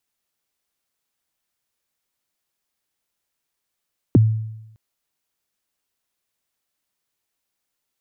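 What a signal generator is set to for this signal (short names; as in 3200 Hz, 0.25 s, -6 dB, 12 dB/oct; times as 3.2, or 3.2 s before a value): kick drum length 0.61 s, from 400 Hz, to 110 Hz, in 20 ms, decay 0.90 s, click off, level -7 dB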